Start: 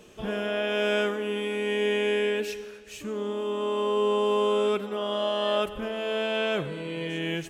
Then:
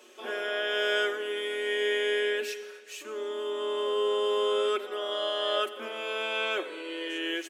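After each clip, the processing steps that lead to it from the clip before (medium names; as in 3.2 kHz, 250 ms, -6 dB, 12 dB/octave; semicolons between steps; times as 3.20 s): Chebyshev high-pass 230 Hz, order 10; bass shelf 330 Hz -8.5 dB; comb 5.4 ms, depth 60%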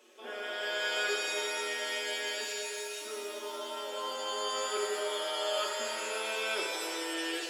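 pitch-shifted reverb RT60 2.5 s, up +7 st, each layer -2 dB, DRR 1 dB; trim -7 dB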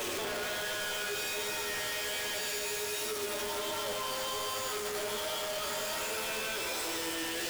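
one-bit comparator; flange 1.3 Hz, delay 8.4 ms, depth 9.3 ms, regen +53%; trim +4 dB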